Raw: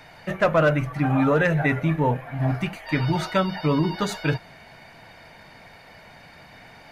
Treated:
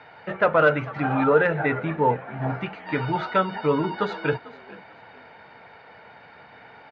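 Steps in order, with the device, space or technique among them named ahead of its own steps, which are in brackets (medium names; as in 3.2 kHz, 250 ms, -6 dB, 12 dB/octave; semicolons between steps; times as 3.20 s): 0.59–1.24 s: treble shelf 3.6 kHz +9 dB; frequency-shifting delay pedal into a guitar cabinet (frequency-shifting echo 444 ms, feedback 30%, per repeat +53 Hz, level -20 dB; cabinet simulation 96–3800 Hz, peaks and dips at 160 Hz -4 dB, 450 Hz +9 dB, 870 Hz +7 dB, 1.4 kHz +8 dB); trim -3.5 dB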